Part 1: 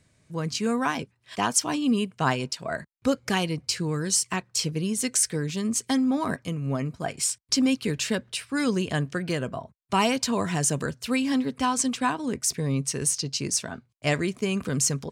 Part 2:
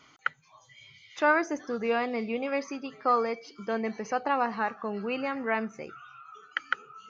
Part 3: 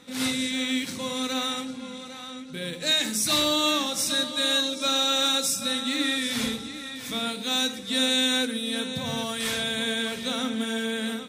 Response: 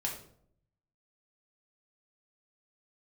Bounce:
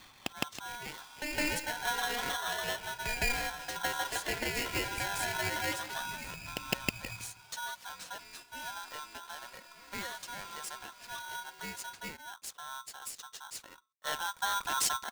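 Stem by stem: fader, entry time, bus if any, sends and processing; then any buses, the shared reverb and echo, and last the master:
13.72 s -18 dB -> 14.47 s -6 dB, 0.00 s, no send, no echo send, none
+1.0 dB, 0.00 s, no send, echo send -4 dB, compression 10:1, threshold -30 dBFS, peak gain reduction 13 dB; LFO low-pass saw down 0.54 Hz 970–2900 Hz; auto duck -10 dB, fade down 0.35 s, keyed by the first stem
-12.5 dB, 0.75 s, no send, no echo send, compression 5:1, threshold -31 dBFS, peak gain reduction 11 dB; feedback comb 330 Hz, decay 0.62 s, mix 60%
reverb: none
echo: feedback delay 161 ms, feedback 23%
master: polarity switched at an audio rate 1.2 kHz

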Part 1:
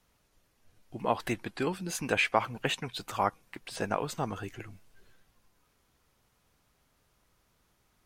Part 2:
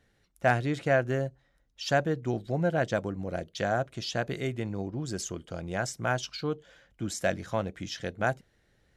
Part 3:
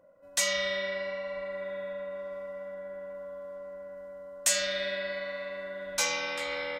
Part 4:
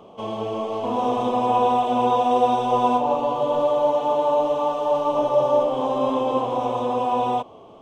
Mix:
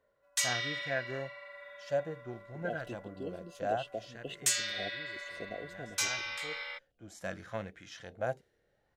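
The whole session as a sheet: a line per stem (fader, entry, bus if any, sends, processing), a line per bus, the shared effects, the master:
-9.0 dB, 1.60 s, no send, FFT band-reject 760–2600 Hz; tone controls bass -5 dB, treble -12 dB
3.90 s -6.5 dB -> 4.53 s -14 dB -> 6.54 s -14 dB -> 7.32 s -1 dB, 0.00 s, no send, harmonic-percussive split percussive -13 dB; bass shelf 300 Hz -9 dB; sweeping bell 0.59 Hz 420–1900 Hz +10 dB
-3.0 dB, 0.00 s, no send, high-pass 1.2 kHz 12 dB/octave
mute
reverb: none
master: tape noise reduction on one side only decoder only

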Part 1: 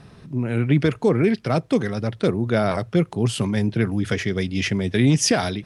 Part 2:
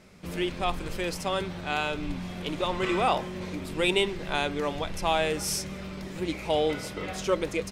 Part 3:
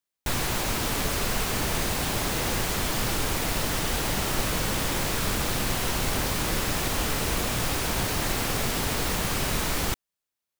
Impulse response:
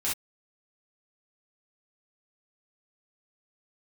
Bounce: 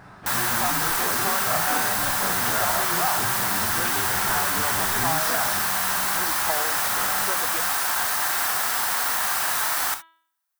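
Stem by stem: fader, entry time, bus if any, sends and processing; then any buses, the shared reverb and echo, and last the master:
-9.5 dB, 0.00 s, send -5 dB, phase randomisation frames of 100 ms; compression 2.5:1, threshold -33 dBFS, peak gain reduction 14.5 dB
-4.0 dB, 0.00 s, no send, compression, threshold -31 dBFS, peak gain reduction 11.5 dB
-9.0 dB, 0.00 s, send -12.5 dB, tilt EQ +4 dB/octave; band-stop 6.9 kHz, Q 25; de-hum 326.6 Hz, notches 13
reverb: on, pre-delay 3 ms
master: high-order bell 1.1 kHz +13 dB

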